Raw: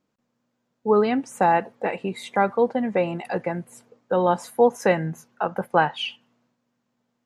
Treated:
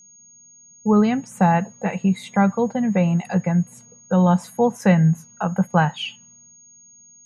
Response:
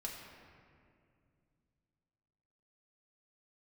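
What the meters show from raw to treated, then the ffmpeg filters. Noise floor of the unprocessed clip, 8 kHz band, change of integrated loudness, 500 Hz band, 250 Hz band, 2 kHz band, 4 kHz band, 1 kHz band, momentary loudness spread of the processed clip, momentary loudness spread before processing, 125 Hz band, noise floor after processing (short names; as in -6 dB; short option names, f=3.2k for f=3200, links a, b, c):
-76 dBFS, +6.0 dB, +3.0 dB, -2.5 dB, +9.0 dB, 0.0 dB, 0.0 dB, -0.5 dB, 8 LU, 11 LU, +13.5 dB, -50 dBFS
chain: -af "aeval=exprs='val(0)+0.00447*sin(2*PI*6600*n/s)':c=same,lowshelf=f=240:t=q:w=3:g=8"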